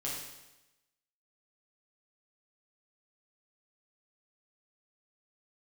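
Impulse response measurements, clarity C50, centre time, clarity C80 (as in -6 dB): 1.0 dB, 62 ms, 4.0 dB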